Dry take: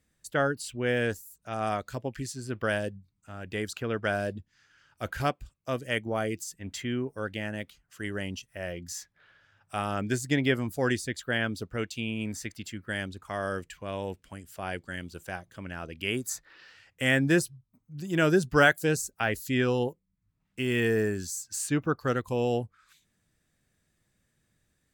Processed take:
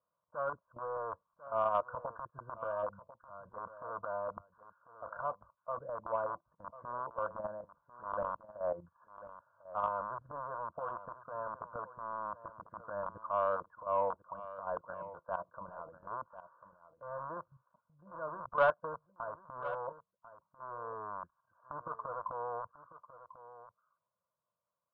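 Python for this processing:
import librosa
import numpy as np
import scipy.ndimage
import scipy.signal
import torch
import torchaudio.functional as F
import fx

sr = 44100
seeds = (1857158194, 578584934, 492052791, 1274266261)

y = fx.rattle_buzz(x, sr, strikes_db=-33.0, level_db=-12.0)
y = scipy.signal.sosfilt(scipy.signal.butter(2, 490.0, 'highpass', fs=sr, output='sos'), y)
y = y + 1.0 * np.pad(y, (int(1.9 * sr / 1000.0), 0))[:len(y)]
y = fx.level_steps(y, sr, step_db=17)
y = fx.transient(y, sr, attack_db=-8, sustain_db=6)
y = fx.rider(y, sr, range_db=4, speed_s=2.0)
y = scipy.signal.sosfilt(scipy.signal.cheby1(6, 3, 1400.0, 'lowpass', fs=sr, output='sos'), y)
y = fx.fixed_phaser(y, sr, hz=960.0, stages=4)
y = 10.0 ** (-25.0 / 20.0) * np.tanh(y / 10.0 ** (-25.0 / 20.0))
y = y + 10.0 ** (-14.5 / 20.0) * np.pad(y, (int(1045 * sr / 1000.0), 0))[:len(y)]
y = y * 10.0 ** (8.5 / 20.0)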